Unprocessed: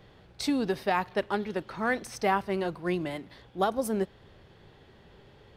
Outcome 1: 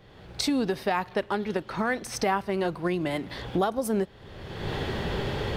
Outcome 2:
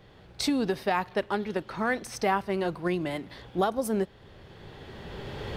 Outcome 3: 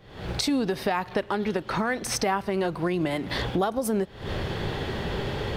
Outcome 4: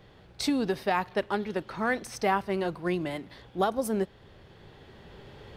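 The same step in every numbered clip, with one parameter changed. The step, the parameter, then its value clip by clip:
camcorder AGC, rising by: 35, 13, 87, 5.2 dB per second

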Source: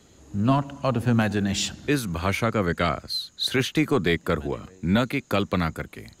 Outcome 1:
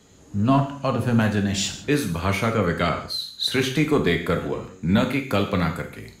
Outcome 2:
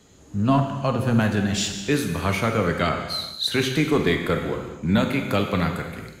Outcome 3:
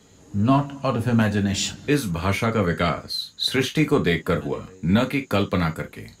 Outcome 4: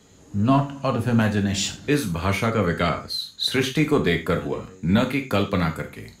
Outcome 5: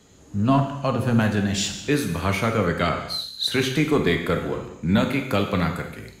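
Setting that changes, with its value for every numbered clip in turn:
reverb whose tail is shaped and stops, gate: 200, 470, 80, 130, 310 milliseconds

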